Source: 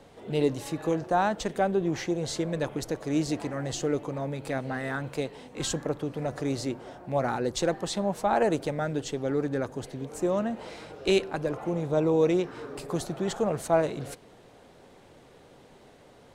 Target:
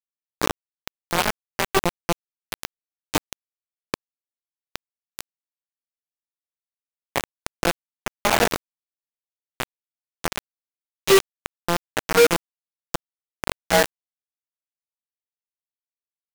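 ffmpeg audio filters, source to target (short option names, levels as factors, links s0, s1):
-af "afftfilt=real='re':imag='-im':win_size=2048:overlap=0.75,bandreject=f=70.68:t=h:w=4,bandreject=f=141.36:t=h:w=4,bandreject=f=212.04:t=h:w=4,bandreject=f=282.72:t=h:w=4,bandreject=f=353.4:t=h:w=4,bandreject=f=424.08:t=h:w=4,bandreject=f=494.76:t=h:w=4,bandreject=f=565.44:t=h:w=4,bandreject=f=636.12:t=h:w=4,bandreject=f=706.8:t=h:w=4,bandreject=f=777.48:t=h:w=4,bandreject=f=848.16:t=h:w=4,bandreject=f=918.84:t=h:w=4,bandreject=f=989.52:t=h:w=4,bandreject=f=1060.2:t=h:w=4,bandreject=f=1130.88:t=h:w=4,bandreject=f=1201.56:t=h:w=4,acrusher=bits=3:mix=0:aa=0.000001,volume=2.51"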